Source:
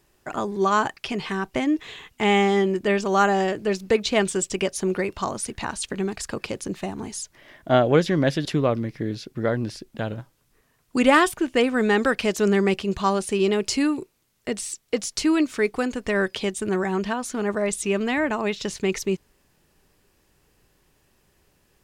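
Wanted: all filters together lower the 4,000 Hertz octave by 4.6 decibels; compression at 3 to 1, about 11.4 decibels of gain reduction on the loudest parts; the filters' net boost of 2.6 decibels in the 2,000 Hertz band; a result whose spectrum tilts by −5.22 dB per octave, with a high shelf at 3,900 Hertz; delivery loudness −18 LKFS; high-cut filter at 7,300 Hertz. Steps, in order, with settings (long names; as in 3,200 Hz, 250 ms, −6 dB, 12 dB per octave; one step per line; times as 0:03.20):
low-pass filter 7,300 Hz
parametric band 2,000 Hz +5.5 dB
high-shelf EQ 3,900 Hz −3 dB
parametric band 4,000 Hz −7.5 dB
downward compressor 3 to 1, threshold −27 dBFS
level +12.5 dB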